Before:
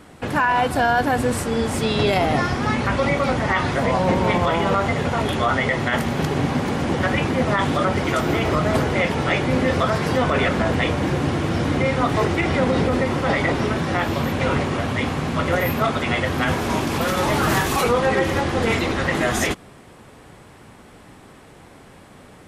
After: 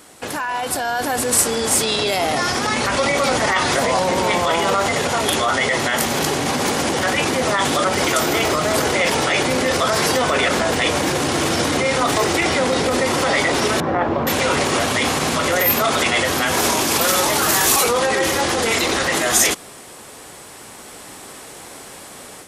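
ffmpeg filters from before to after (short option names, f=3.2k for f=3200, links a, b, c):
-filter_complex "[0:a]asettb=1/sr,asplit=3[a][b][c];[a]atrim=end=13.804[d];[b]atrim=start=13.8:end=14.27,asetpts=PTS-STARTPTS,afade=t=in:d=0.004:c=qsin,afade=t=out:st=0.466:d=0.004:c=qsin,lowpass=1.1k[e];[c]atrim=start=14.266[f];[d][e]acrossfade=d=0.004:c1=hsin:c2=qsin[g];[g][f]acrossfade=d=0.004:c1=qsin:c2=hsin,alimiter=limit=-16.5dB:level=0:latency=1:release=20,bass=f=250:g=-11,treble=f=4k:g=13,dynaudnorm=f=640:g=3:m=8dB"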